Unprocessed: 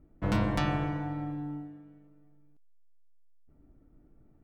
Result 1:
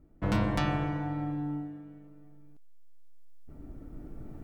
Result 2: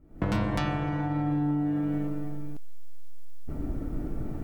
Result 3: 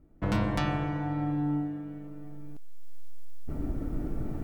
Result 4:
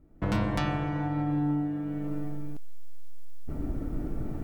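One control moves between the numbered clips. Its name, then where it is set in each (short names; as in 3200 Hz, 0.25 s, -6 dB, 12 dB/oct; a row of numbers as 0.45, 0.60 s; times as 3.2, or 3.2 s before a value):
recorder AGC, rising by: 5.1, 86, 13, 31 dB/s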